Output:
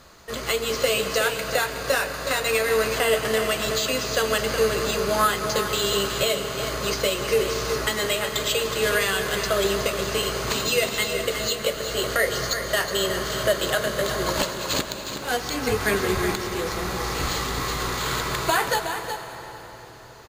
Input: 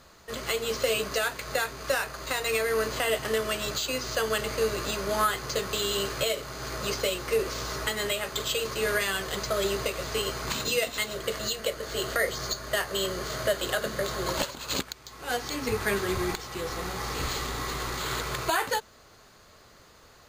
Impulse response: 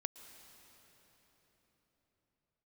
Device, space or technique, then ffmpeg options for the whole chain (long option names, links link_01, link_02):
cave: -filter_complex "[0:a]aecho=1:1:368:0.355[link_01];[1:a]atrim=start_sample=2205[link_02];[link_01][link_02]afir=irnorm=-1:irlink=0,volume=7dB"